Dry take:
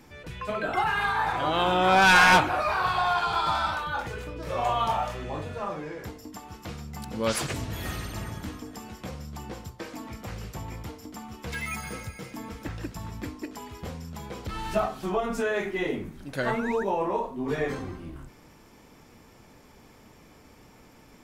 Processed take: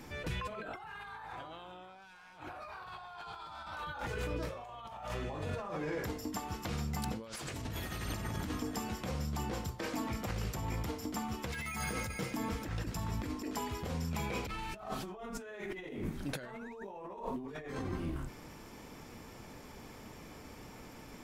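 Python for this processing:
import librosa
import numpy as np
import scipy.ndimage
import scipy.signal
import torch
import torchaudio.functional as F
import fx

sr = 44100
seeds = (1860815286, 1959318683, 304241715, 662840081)

y = fx.peak_eq(x, sr, hz=2400.0, db=11.5, octaves=0.24, at=(14.11, 14.76))
y = fx.over_compress(y, sr, threshold_db=-38.0, ratio=-1.0)
y = y * librosa.db_to_amplitude(-4.0)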